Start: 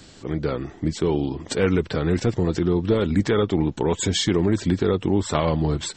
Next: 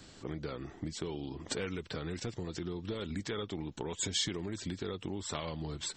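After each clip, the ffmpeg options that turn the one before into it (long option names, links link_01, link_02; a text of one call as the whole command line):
ffmpeg -i in.wav -filter_complex "[0:a]equalizer=frequency=1200:width=1.5:gain=2,acrossover=split=2500[link_01][link_02];[link_01]acompressor=threshold=-28dB:ratio=6[link_03];[link_03][link_02]amix=inputs=2:normalize=0,volume=-7.5dB" out.wav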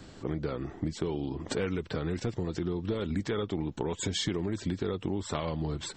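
ffmpeg -i in.wav -af "highshelf=frequency=2100:gain=-9.5,volume=7dB" out.wav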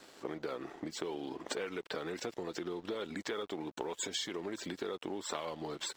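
ffmpeg -i in.wav -af "highpass=420,acompressor=threshold=-37dB:ratio=4,aeval=exprs='sgn(val(0))*max(abs(val(0))-0.00112,0)':channel_layout=same,volume=2.5dB" out.wav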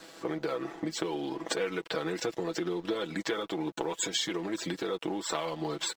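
ffmpeg -i in.wav -af "aecho=1:1:6.1:0.62,volume=5dB" out.wav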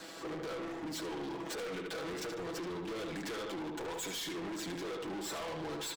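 ffmpeg -i in.wav -filter_complex "[0:a]asplit=2[link_01][link_02];[link_02]adelay=75,lowpass=frequency=3100:poles=1,volume=-7dB,asplit=2[link_03][link_04];[link_04]adelay=75,lowpass=frequency=3100:poles=1,volume=0.48,asplit=2[link_05][link_06];[link_06]adelay=75,lowpass=frequency=3100:poles=1,volume=0.48,asplit=2[link_07][link_08];[link_08]adelay=75,lowpass=frequency=3100:poles=1,volume=0.48,asplit=2[link_09][link_10];[link_10]adelay=75,lowpass=frequency=3100:poles=1,volume=0.48,asplit=2[link_11][link_12];[link_12]adelay=75,lowpass=frequency=3100:poles=1,volume=0.48[link_13];[link_01][link_03][link_05][link_07][link_09][link_11][link_13]amix=inputs=7:normalize=0,aeval=exprs='(tanh(112*val(0)+0.05)-tanh(0.05))/112':channel_layout=same,volume=3dB" out.wav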